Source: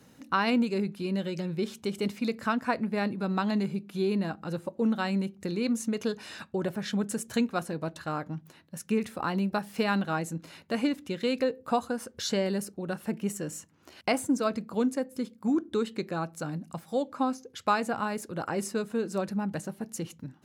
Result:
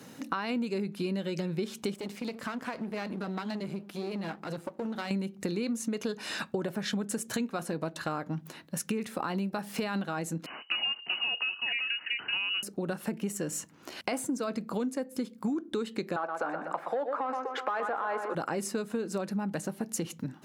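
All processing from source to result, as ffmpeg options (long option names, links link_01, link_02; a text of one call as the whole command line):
ffmpeg -i in.wav -filter_complex "[0:a]asettb=1/sr,asplit=3[link_01][link_02][link_03];[link_01]atrim=end=1.944[link_04];[link_02]atrim=start=1.94:end=5.11,asetpts=PTS-STARTPTS,afade=type=in:duration=0.004:curve=qsin,afade=type=out:start_time=3.166:duration=0.004:curve=qsin,aeval=exprs='if(lt(val(0),0),0.251*val(0),val(0))':channel_layout=same,acompressor=threshold=-32dB:ratio=6:attack=3.2:release=140:knee=1:detection=peak,flanger=delay=0.9:depth=5.3:regen=-74:speed=1.9:shape=triangular[link_05];[link_03]atrim=start=5.106[link_06];[link_04][link_05]acrossfade=duration=0.004:curve1=hsin:curve2=qsin[link_07];[link_07][link_06]acrossfade=duration=0.004:curve1=qsin:curve2=hsin,asettb=1/sr,asplit=3[link_08][link_09][link_10];[link_08]atrim=end=10.464[link_11];[link_09]atrim=start=10.46:end=12.63,asetpts=PTS-STARTPTS,afade=type=in:duration=0.004:curve=qsin,afade=type=out:start_time=2.166:duration=0.004:curve=qsin,aecho=1:1:383:0.447,atrim=end_sample=95697,lowpass=frequency=2600:width_type=q:width=0.5098,lowpass=frequency=2600:width_type=q:width=0.6013,lowpass=frequency=2600:width_type=q:width=0.9,lowpass=frequency=2600:width_type=q:width=2.563,afreqshift=-3100[link_12];[link_10]atrim=start=12.626[link_13];[link_11][link_12]acrossfade=duration=0.004:curve1=hsin:curve2=qsin[link_14];[link_14][link_13]acrossfade=duration=0.004:curve1=qsin:curve2=hsin,asettb=1/sr,asplit=3[link_15][link_16][link_17];[link_15]atrim=end=16.164[link_18];[link_16]atrim=start=16.16:end=18.35,asetpts=PTS-STARTPTS,afade=type=in:duration=0.004:curve=qsin,afade=type=out:start_time=2.186:duration=0.004:curve=qsin,asplit=2[link_19][link_20];[link_20]highpass=frequency=720:poles=1,volume=19dB,asoftclip=type=tanh:threshold=-12dB[link_21];[link_19][link_21]amix=inputs=2:normalize=0,lowpass=frequency=3300:poles=1,volume=-6dB,acrossover=split=340 2000:gain=0.0708 1 0.1[link_22][link_23][link_24];[link_22][link_23][link_24]amix=inputs=3:normalize=0,asplit=2[link_25][link_26];[link_26]adelay=122,lowpass=frequency=4300:poles=1,volume=-10dB,asplit=2[link_27][link_28];[link_28]adelay=122,lowpass=frequency=4300:poles=1,volume=0.41,asplit=2[link_29][link_30];[link_30]adelay=122,lowpass=frequency=4300:poles=1,volume=0.41,asplit=2[link_31][link_32];[link_32]adelay=122,lowpass=frequency=4300:poles=1,volume=0.41[link_33];[link_25][link_27][link_29][link_31][link_33]amix=inputs=5:normalize=0,atrim=end_sample=96579[link_34];[link_17]atrim=start=18.346[link_35];[link_18][link_34]acrossfade=duration=0.004:curve1=hsin:curve2=qsin[link_36];[link_36][link_35]acrossfade=duration=0.004:curve1=qsin:curve2=hsin,highpass=150,alimiter=limit=-21dB:level=0:latency=1:release=12,acompressor=threshold=-38dB:ratio=6,volume=8.5dB" out.wav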